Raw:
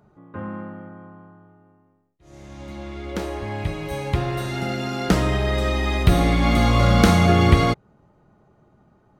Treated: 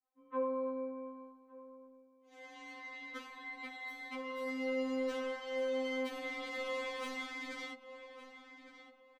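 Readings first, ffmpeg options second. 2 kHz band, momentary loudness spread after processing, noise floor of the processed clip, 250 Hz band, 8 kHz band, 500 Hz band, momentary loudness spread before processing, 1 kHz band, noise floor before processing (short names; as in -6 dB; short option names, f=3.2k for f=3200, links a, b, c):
-13.5 dB, 19 LU, -65 dBFS, -20.0 dB, -21.5 dB, -12.0 dB, 20 LU, -19.5 dB, -60 dBFS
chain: -filter_complex "[0:a]acrossover=split=300 4300:gain=0.112 1 0.251[a][b][c];[a][b][c]amix=inputs=3:normalize=0,bandreject=f=370:w=12,asoftclip=type=tanh:threshold=-23.5dB,areverse,acompressor=mode=upward:threshold=-50dB:ratio=2.5,areverse,adynamicequalizer=threshold=0.01:dfrequency=440:dqfactor=0.71:tfrequency=440:tqfactor=0.71:attack=5:release=100:ratio=0.375:range=1.5:mode=boostabove:tftype=bell,agate=range=-33dB:threshold=-48dB:ratio=3:detection=peak,asplit=2[d][e];[e]adelay=1161,lowpass=f=3.9k:p=1,volume=-22.5dB,asplit=2[f][g];[g]adelay=1161,lowpass=f=3.9k:p=1,volume=0.26[h];[f][h]amix=inputs=2:normalize=0[i];[d][i]amix=inputs=2:normalize=0,acompressor=threshold=-35dB:ratio=6,bandreject=f=78.54:t=h:w=4,bandreject=f=157.08:t=h:w=4,bandreject=f=235.62:t=h:w=4,bandreject=f=314.16:t=h:w=4,bandreject=f=392.7:t=h:w=4,bandreject=f=471.24:t=h:w=4,bandreject=f=549.78:t=h:w=4,bandreject=f=628.32:t=h:w=4,bandreject=f=706.86:t=h:w=4,bandreject=f=785.4:t=h:w=4,bandreject=f=863.94:t=h:w=4,bandreject=f=942.48:t=h:w=4,bandreject=f=1.02102k:t=h:w=4,bandreject=f=1.09956k:t=h:w=4,bandreject=f=1.1781k:t=h:w=4,afftfilt=real='re*3.46*eq(mod(b,12),0)':imag='im*3.46*eq(mod(b,12),0)':win_size=2048:overlap=0.75"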